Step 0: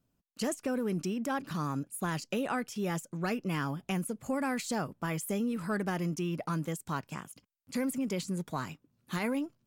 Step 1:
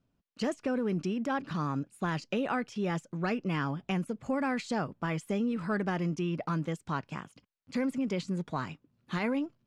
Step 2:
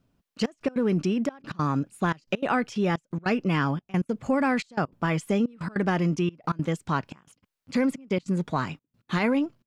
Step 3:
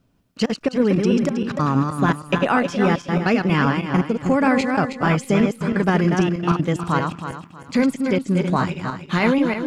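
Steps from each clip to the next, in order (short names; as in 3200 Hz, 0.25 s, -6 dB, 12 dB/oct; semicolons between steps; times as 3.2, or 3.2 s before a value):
LPF 4300 Hz 12 dB/oct; gain +1.5 dB
step gate "xxxxxx..x.x" 198 bpm -24 dB; gain +7 dB
regenerating reverse delay 0.159 s, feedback 53%, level -4.5 dB; gain +5.5 dB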